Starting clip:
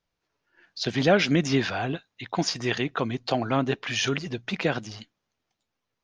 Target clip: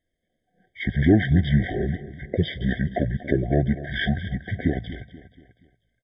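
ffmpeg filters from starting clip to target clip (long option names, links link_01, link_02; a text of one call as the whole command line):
ffmpeg -i in.wav -af "aecho=1:1:241|482|723|964:0.178|0.0782|0.0344|0.0151,asetrate=23361,aresample=44100,atempo=1.88775,afftfilt=real='re*eq(mod(floor(b*sr/1024/760),2),0)':imag='im*eq(mod(floor(b*sr/1024/760),2),0)':win_size=1024:overlap=0.75,volume=4dB" out.wav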